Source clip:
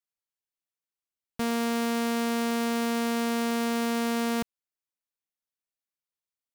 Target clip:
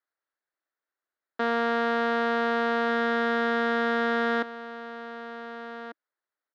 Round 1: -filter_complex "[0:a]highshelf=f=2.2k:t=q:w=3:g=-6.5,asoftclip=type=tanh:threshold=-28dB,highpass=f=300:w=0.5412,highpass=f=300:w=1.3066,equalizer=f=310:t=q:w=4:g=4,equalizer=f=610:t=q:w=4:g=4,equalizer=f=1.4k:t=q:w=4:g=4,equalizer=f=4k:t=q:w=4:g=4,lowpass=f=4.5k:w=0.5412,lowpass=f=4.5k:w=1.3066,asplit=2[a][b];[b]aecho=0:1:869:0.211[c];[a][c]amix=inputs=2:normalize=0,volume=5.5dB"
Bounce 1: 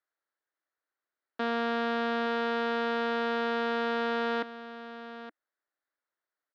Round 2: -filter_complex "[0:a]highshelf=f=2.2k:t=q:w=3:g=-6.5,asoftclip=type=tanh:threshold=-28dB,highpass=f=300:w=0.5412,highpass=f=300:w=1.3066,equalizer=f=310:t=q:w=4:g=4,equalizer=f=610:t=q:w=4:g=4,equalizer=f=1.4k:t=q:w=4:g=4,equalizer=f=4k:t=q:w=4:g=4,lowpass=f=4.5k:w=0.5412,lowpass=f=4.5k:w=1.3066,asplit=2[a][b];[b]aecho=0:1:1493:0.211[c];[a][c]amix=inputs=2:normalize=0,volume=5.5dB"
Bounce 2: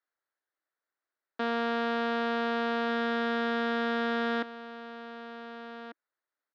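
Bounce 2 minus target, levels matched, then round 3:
soft clip: distortion +7 dB
-filter_complex "[0:a]highshelf=f=2.2k:t=q:w=3:g=-6.5,asoftclip=type=tanh:threshold=-21.5dB,highpass=f=300:w=0.5412,highpass=f=300:w=1.3066,equalizer=f=310:t=q:w=4:g=4,equalizer=f=610:t=q:w=4:g=4,equalizer=f=1.4k:t=q:w=4:g=4,equalizer=f=4k:t=q:w=4:g=4,lowpass=f=4.5k:w=0.5412,lowpass=f=4.5k:w=1.3066,asplit=2[a][b];[b]aecho=0:1:1493:0.211[c];[a][c]amix=inputs=2:normalize=0,volume=5.5dB"

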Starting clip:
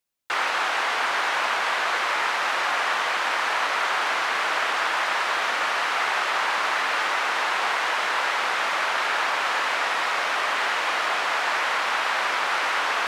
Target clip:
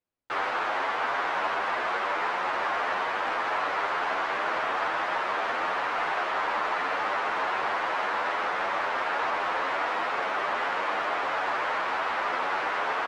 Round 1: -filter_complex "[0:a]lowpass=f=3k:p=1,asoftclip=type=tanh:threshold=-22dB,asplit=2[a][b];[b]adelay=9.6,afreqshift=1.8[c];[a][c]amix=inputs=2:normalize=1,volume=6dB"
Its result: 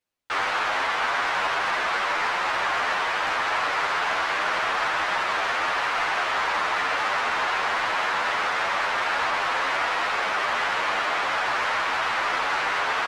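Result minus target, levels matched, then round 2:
4000 Hz band +4.5 dB
-filter_complex "[0:a]lowpass=f=750:p=1,asoftclip=type=tanh:threshold=-22dB,asplit=2[a][b];[b]adelay=9.6,afreqshift=1.8[c];[a][c]amix=inputs=2:normalize=1,volume=6dB"

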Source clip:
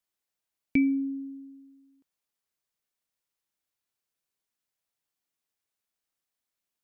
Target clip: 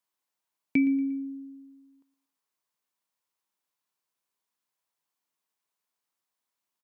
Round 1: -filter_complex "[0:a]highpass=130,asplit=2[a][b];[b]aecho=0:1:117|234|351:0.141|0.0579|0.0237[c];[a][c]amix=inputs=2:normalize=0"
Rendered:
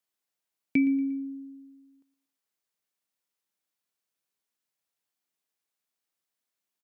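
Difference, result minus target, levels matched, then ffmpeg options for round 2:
1000 Hz band -3.5 dB
-filter_complex "[0:a]highpass=130,equalizer=f=1k:w=2.9:g=8.5,asplit=2[a][b];[b]aecho=0:1:117|234|351:0.141|0.0579|0.0237[c];[a][c]amix=inputs=2:normalize=0"

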